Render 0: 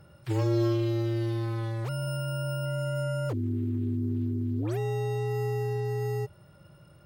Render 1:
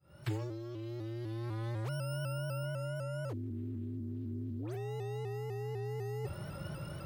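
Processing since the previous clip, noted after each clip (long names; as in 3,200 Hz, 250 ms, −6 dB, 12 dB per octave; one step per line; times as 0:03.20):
fade in at the beginning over 0.72 s
compressor whose output falls as the input rises −40 dBFS, ratio −1
pitch modulation by a square or saw wave saw up 4 Hz, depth 100 cents
level +1.5 dB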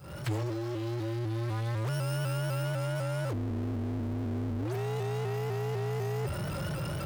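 power curve on the samples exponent 0.5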